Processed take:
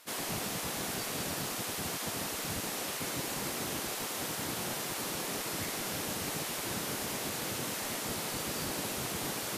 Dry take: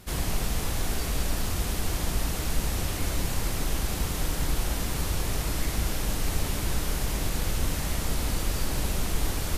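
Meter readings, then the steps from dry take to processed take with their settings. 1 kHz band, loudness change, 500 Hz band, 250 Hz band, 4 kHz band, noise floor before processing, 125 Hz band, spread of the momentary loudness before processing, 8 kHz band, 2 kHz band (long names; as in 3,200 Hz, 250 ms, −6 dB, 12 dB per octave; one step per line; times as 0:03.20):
−2.0 dB, −4.5 dB, −2.5 dB, −5.0 dB, −2.0 dB, −31 dBFS, −13.5 dB, 1 LU, −2.0 dB, −2.0 dB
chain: gate on every frequency bin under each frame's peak −15 dB weak
level −2 dB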